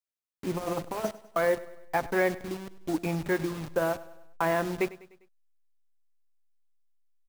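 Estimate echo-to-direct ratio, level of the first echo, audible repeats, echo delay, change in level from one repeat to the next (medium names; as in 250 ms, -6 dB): -17.0 dB, -18.5 dB, 3, 100 ms, -6.0 dB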